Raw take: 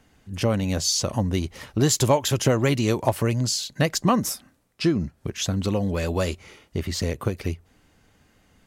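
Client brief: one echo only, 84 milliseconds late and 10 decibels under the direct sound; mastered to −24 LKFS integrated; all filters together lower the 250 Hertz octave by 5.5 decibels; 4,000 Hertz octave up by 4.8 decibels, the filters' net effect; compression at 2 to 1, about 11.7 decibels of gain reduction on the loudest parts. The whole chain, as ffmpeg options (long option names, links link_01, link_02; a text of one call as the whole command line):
ffmpeg -i in.wav -af "equalizer=frequency=250:width_type=o:gain=-8,equalizer=frequency=4000:width_type=o:gain=6,acompressor=threshold=-38dB:ratio=2,aecho=1:1:84:0.316,volume=10dB" out.wav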